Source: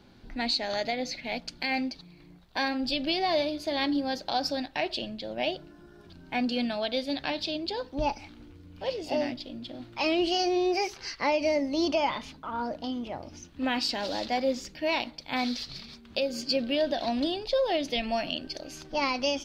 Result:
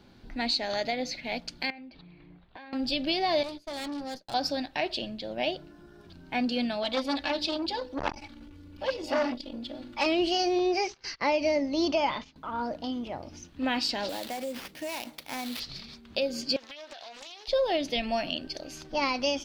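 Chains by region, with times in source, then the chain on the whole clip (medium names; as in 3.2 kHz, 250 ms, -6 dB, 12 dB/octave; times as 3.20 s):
1.70–2.73 s: low-pass 3.4 kHz 24 dB/octave + compression 16:1, threshold -42 dBFS
3.43–4.34 s: expander -31 dBFS + valve stage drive 33 dB, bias 0.75
6.83–10.06 s: hum notches 50/100/150/200/250/300/350/400/450/500 Hz + comb 3.5 ms, depth 85% + transformer saturation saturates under 1.5 kHz
10.59–12.36 s: steep low-pass 7.3 kHz + gate -43 dBFS, range -17 dB
14.09–15.60 s: high-pass 180 Hz 6 dB/octave + compression 5:1, threshold -31 dBFS + sample-rate reducer 8 kHz, jitter 20%
16.56–17.48 s: high-pass 970 Hz + compression 12:1, threshold -40 dBFS + loudspeaker Doppler distortion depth 0.66 ms
whole clip: none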